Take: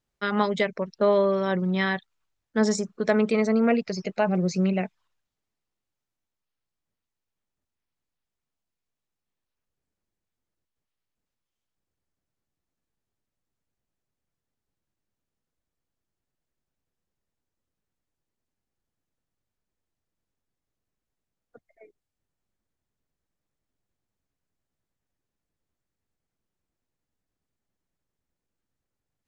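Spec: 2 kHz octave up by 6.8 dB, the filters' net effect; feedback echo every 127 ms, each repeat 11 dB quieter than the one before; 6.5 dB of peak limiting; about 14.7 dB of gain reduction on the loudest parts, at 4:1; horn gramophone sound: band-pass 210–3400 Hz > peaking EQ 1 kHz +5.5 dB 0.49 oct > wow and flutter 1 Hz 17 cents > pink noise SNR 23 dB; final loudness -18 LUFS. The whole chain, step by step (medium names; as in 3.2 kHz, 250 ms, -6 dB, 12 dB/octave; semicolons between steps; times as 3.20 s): peaking EQ 2 kHz +8 dB; compression 4:1, threshold -34 dBFS; peak limiter -25.5 dBFS; band-pass 210–3400 Hz; peaking EQ 1 kHz +5.5 dB 0.49 oct; feedback delay 127 ms, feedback 28%, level -11 dB; wow and flutter 1 Hz 17 cents; pink noise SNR 23 dB; trim +20 dB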